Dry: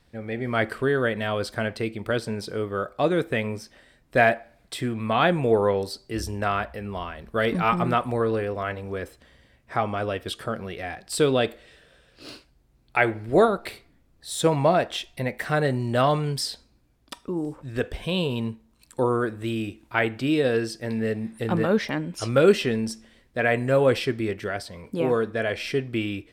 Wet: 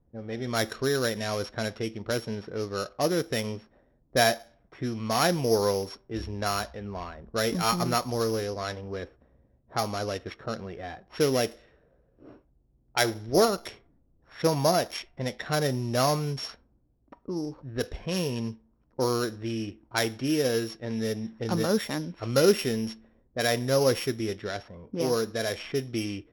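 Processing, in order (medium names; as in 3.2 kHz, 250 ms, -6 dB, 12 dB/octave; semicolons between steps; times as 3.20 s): sorted samples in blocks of 8 samples; level-controlled noise filter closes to 550 Hz, open at -21 dBFS; trim -3.5 dB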